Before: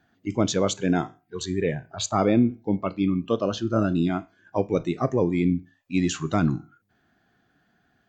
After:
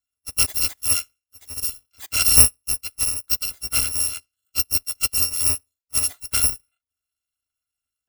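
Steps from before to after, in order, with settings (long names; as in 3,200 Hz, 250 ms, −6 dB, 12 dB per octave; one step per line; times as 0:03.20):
samples in bit-reversed order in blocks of 256 samples
expander for the loud parts 2.5 to 1, over −35 dBFS
level +8.5 dB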